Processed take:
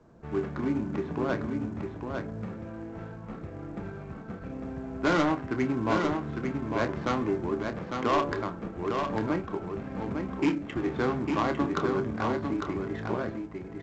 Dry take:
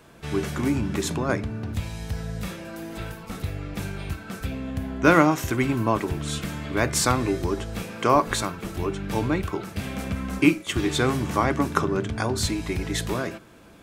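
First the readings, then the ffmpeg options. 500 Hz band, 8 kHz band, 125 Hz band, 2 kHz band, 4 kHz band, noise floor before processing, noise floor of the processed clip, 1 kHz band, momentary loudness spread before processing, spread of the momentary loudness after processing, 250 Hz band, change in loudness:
-3.5 dB, -21.0 dB, -7.5 dB, -7.0 dB, -11.0 dB, -46 dBFS, -42 dBFS, -5.0 dB, 12 LU, 13 LU, -4.0 dB, -5.0 dB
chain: -filter_complex "[0:a]lowpass=2.1k,bandreject=f=143.6:t=h:w=4,bandreject=f=287.2:t=h:w=4,bandreject=f=430.8:t=h:w=4,bandreject=f=574.4:t=h:w=4,bandreject=f=718:t=h:w=4,bandreject=f=861.6:t=h:w=4,bandreject=f=1.0052k:t=h:w=4,bandreject=f=1.1488k:t=h:w=4,bandreject=f=1.2924k:t=h:w=4,bandreject=f=1.436k:t=h:w=4,bandreject=f=1.5796k:t=h:w=4,bandreject=f=1.7232k:t=h:w=4,bandreject=f=1.8668k:t=h:w=4,bandreject=f=2.0104k:t=h:w=4,bandreject=f=2.154k:t=h:w=4,bandreject=f=2.2976k:t=h:w=4,bandreject=f=2.4412k:t=h:w=4,bandreject=f=2.5848k:t=h:w=4,bandreject=f=2.7284k:t=h:w=4,bandreject=f=2.872k:t=h:w=4,bandreject=f=3.0156k:t=h:w=4,bandreject=f=3.1592k:t=h:w=4,bandreject=f=3.3028k:t=h:w=4,bandreject=f=3.4464k:t=h:w=4,bandreject=f=3.59k:t=h:w=4,bandreject=f=3.7336k:t=h:w=4,bandreject=f=3.8772k:t=h:w=4,acrossover=split=140[a][b];[a]acompressor=threshold=-44dB:ratio=5[c];[b]asoftclip=type=hard:threshold=-16.5dB[d];[c][d]amix=inputs=2:normalize=0,adynamicsmooth=sensitivity=2.5:basefreq=1k,asplit=2[e][f];[f]adelay=28,volume=-10dB[g];[e][g]amix=inputs=2:normalize=0,asplit=2[h][i];[i]aecho=0:1:852:0.562[j];[h][j]amix=inputs=2:normalize=0,volume=-3.5dB" -ar 16000 -c:a pcm_mulaw

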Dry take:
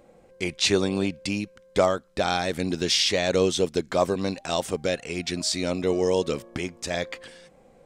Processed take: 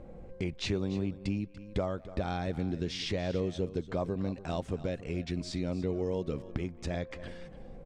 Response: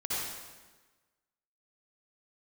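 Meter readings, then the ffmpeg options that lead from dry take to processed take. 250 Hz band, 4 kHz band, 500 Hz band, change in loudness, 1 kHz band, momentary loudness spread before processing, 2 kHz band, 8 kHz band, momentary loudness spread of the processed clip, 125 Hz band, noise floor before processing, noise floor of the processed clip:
-5.5 dB, -15.5 dB, -10.5 dB, -9.5 dB, -12.0 dB, 9 LU, -13.0 dB, -19.5 dB, 6 LU, -1.0 dB, -56 dBFS, -49 dBFS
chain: -filter_complex "[0:a]aemphasis=mode=reproduction:type=riaa,asplit=2[a][b];[b]adelay=190,highpass=300,lowpass=3.4k,asoftclip=type=hard:threshold=-13.5dB,volume=-27dB[c];[a][c]amix=inputs=2:normalize=0,acompressor=threshold=-36dB:ratio=2.5,asplit=2[d][e];[e]aecho=0:1:290:0.168[f];[d][f]amix=inputs=2:normalize=0"

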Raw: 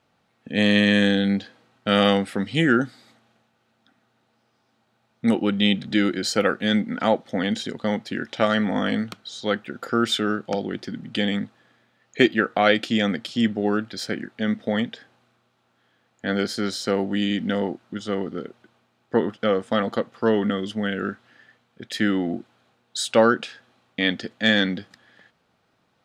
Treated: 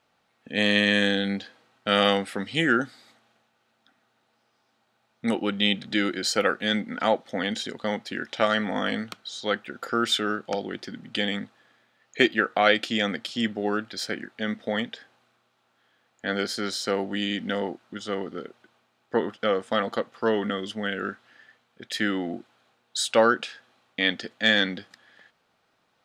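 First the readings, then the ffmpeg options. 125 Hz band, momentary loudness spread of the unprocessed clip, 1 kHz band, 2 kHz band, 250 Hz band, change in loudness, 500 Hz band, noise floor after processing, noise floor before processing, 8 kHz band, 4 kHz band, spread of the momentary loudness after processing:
-7.5 dB, 12 LU, -1.0 dB, -0.5 dB, -6.0 dB, -3.0 dB, -3.0 dB, -70 dBFS, -68 dBFS, 0.0 dB, 0.0 dB, 14 LU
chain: -af "equalizer=f=110:w=0.34:g=-8.5"

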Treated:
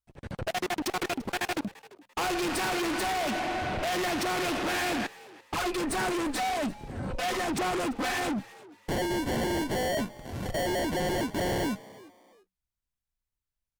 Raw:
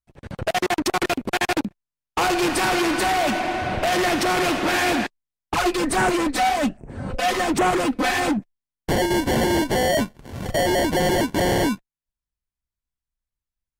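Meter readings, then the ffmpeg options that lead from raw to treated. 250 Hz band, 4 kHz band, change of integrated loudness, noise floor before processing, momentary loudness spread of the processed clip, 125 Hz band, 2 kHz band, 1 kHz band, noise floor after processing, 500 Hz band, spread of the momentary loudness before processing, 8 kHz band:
-8.5 dB, -7.5 dB, -8.5 dB, under -85 dBFS, 8 LU, -7.5 dB, -8.5 dB, -9.0 dB, under -85 dBFS, -8.5 dB, 8 LU, -7.5 dB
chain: -filter_complex "[0:a]asoftclip=type=tanh:threshold=-25.5dB,asplit=2[a][b];[b]asplit=2[c][d];[c]adelay=341,afreqshift=90,volume=-20.5dB[e];[d]adelay=682,afreqshift=180,volume=-31dB[f];[e][f]amix=inputs=2:normalize=0[g];[a][g]amix=inputs=2:normalize=0,volume=-2dB"

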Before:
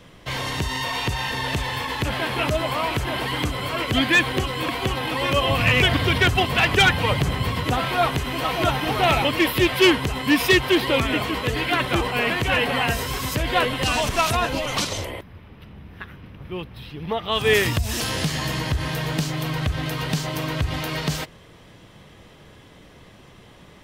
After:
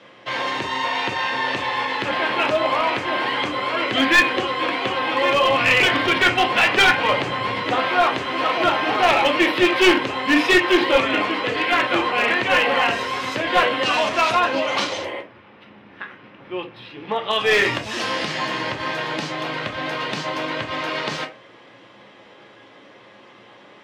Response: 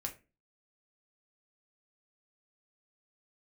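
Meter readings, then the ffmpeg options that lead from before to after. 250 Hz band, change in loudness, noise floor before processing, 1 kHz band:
+0.5 dB, +2.5 dB, -48 dBFS, +4.5 dB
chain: -filter_complex "[0:a]highpass=360,lowpass=3.8k[a];[1:a]atrim=start_sample=2205[b];[a][b]afir=irnorm=-1:irlink=0,aeval=exprs='clip(val(0),-1,0.133)':c=same,volume=5.5dB"

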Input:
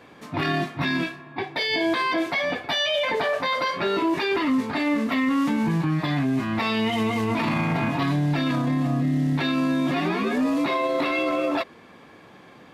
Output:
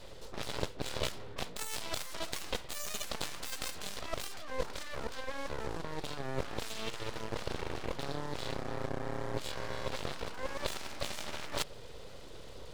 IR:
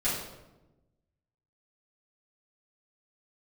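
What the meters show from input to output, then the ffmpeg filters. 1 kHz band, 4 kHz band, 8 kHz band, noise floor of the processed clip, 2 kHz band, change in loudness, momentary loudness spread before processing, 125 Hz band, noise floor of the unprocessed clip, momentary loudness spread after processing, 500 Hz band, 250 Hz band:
-15.5 dB, -11.0 dB, n/a, -46 dBFS, -16.5 dB, -16.0 dB, 3 LU, -17.5 dB, -49 dBFS, 4 LU, -13.5 dB, -23.5 dB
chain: -filter_complex "[0:a]acrossover=split=5600[a][b];[b]acompressor=threshold=-55dB:ratio=4:attack=1:release=60[c];[a][c]amix=inputs=2:normalize=0,equalizer=f=125:t=o:w=1:g=4,equalizer=f=250:t=o:w=1:g=11,equalizer=f=500:t=o:w=1:g=-7,equalizer=f=1k:t=o:w=1:g=-6,equalizer=f=2k:t=o:w=1:g=-9,equalizer=f=4k:t=o:w=1:g=8,equalizer=f=8k:t=o:w=1:g=7,areverse,acompressor=threshold=-30dB:ratio=8,areverse,aeval=exprs='0.1*(cos(1*acos(clip(val(0)/0.1,-1,1)))-cos(1*PI/2))+0.0355*(cos(3*acos(clip(val(0)/0.1,-1,1)))-cos(3*PI/2))+0.00178*(cos(4*acos(clip(val(0)/0.1,-1,1)))-cos(4*PI/2))+0.00562*(cos(7*acos(clip(val(0)/0.1,-1,1)))-cos(7*PI/2))':c=same,aeval=exprs='abs(val(0))':c=same,volume=7dB"

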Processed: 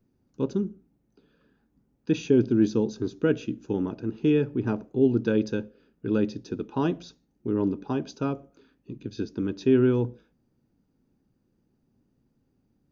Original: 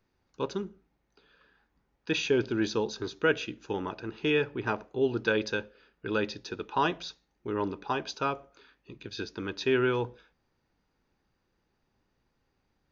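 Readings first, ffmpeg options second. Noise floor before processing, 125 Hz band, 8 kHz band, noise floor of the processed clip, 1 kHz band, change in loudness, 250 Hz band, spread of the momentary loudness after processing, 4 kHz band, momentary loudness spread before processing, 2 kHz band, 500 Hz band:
-77 dBFS, +9.0 dB, n/a, -72 dBFS, -6.5 dB, +4.5 dB, +9.0 dB, 14 LU, -8.0 dB, 13 LU, -8.0 dB, +3.0 dB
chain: -af "equalizer=f=125:t=o:w=1:g=7,equalizer=f=250:t=o:w=1:g=11,equalizer=f=1k:t=o:w=1:g=-6,equalizer=f=2k:t=o:w=1:g=-8,equalizer=f=4k:t=o:w=1:g=-7"

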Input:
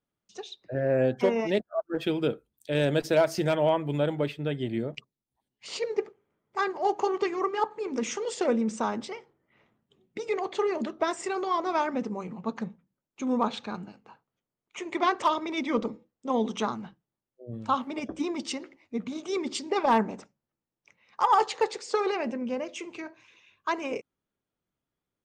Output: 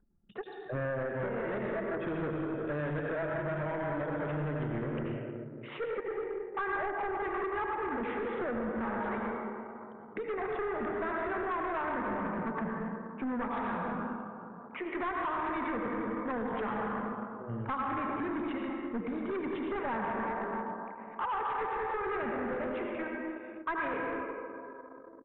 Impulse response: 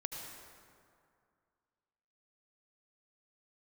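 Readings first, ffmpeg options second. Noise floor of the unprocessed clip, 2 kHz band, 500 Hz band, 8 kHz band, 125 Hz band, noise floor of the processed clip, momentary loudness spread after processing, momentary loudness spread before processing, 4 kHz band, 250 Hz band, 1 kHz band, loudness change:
under -85 dBFS, 0.0 dB, -6.5 dB, under -35 dB, -3.5 dB, -48 dBFS, 8 LU, 16 LU, -16.0 dB, -4.5 dB, -5.0 dB, -6.0 dB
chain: -filter_complex "[1:a]atrim=start_sample=2205[a];[0:a][a]afir=irnorm=-1:irlink=0,acompressor=threshold=-30dB:ratio=10,aresample=8000,volume=34dB,asoftclip=hard,volume=-34dB,aresample=44100,lowshelf=f=380:g=4,acrossover=split=130|860[b][c][d];[b]acrusher=samples=15:mix=1:aa=0.000001[e];[c]aeval=exprs='0.0422*(cos(1*acos(clip(val(0)/0.0422,-1,1)))-cos(1*PI/2))+0.00376*(cos(2*acos(clip(val(0)/0.0422,-1,1)))-cos(2*PI/2))':c=same[f];[e][f][d]amix=inputs=3:normalize=0,acompressor=mode=upward:threshold=-40dB:ratio=2.5,anlmdn=0.00631,lowpass=f=1.7k:t=q:w=2.6"

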